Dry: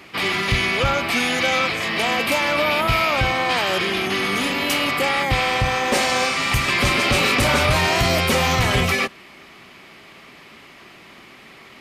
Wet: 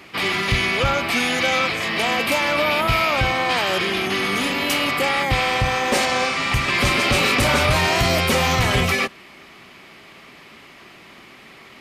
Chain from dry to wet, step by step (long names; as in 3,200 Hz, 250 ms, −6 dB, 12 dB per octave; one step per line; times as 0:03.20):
0:06.05–0:06.74: high-shelf EQ 7,400 Hz −9.5 dB